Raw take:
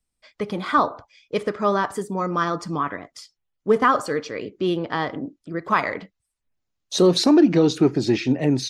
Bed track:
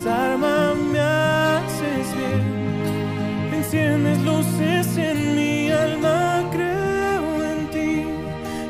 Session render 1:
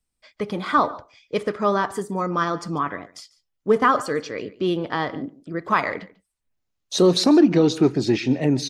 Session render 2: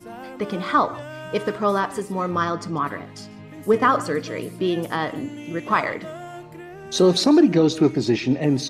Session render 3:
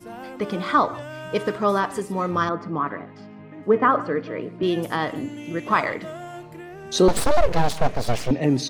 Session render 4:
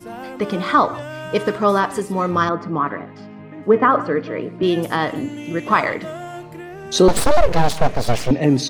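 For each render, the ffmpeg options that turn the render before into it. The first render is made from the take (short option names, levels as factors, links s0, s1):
-af "aecho=1:1:144:0.0944"
-filter_complex "[1:a]volume=0.141[s0];[0:a][s0]amix=inputs=2:normalize=0"
-filter_complex "[0:a]asettb=1/sr,asplit=3[s0][s1][s2];[s0]atrim=end=2.494[s3];[s1]atrim=start=2.49:end=4.63,asetpts=PTS-STARTPTS,afade=t=in:d=0.004:c=qsin,afade=t=out:st=2.136:d=0.004:c=qsin,highpass=140,lowpass=2000[s4];[s2]atrim=start=4.626[s5];[s3][s4]acrossfade=d=0.004:c1=hsin:c2=qsin[s6];[s6][s5]acrossfade=d=0.004:c1=qsin:c2=hsin,asettb=1/sr,asplit=3[s7][s8][s9];[s7]atrim=end=7.084[s10];[s8]atrim=start=7.08:end=8.31,asetpts=PTS-STARTPTS,afade=t=in:d=0.004:c=qsin,afade=t=out:st=1.226:d=0.004:c=qsin,aeval=exprs='abs(val(0))':c=same[s11];[s9]atrim=start=8.306[s12];[s10][s11]acrossfade=d=0.004:c1=hsin:c2=qsin[s13];[s13][s12]acrossfade=d=0.004:c1=qsin:c2=hsin"
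-af "volume=1.68,alimiter=limit=0.708:level=0:latency=1"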